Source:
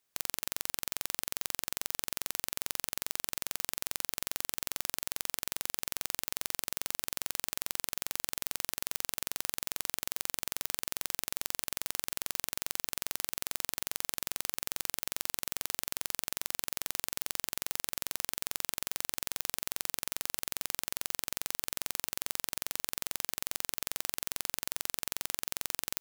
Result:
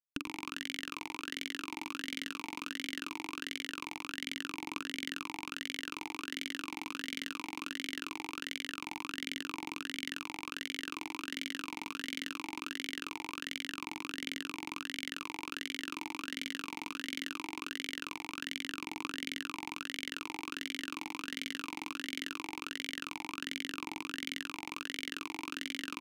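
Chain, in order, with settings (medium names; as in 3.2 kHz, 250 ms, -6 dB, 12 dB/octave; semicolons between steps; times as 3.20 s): phaser 0.21 Hz, delay 4.5 ms, feedback 37%; hysteresis with a dead band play -20.5 dBFS; on a send: delay 108 ms -9.5 dB; on the sum: talking filter i-u 1.4 Hz; trim +17.5 dB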